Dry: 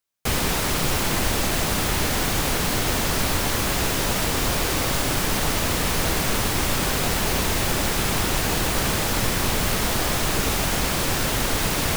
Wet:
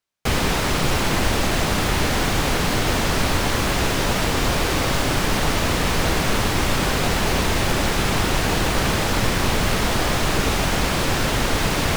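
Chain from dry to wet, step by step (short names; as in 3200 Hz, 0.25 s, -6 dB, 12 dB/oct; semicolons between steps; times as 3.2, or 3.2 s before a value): high shelf 8000 Hz -12 dB; gain +3.5 dB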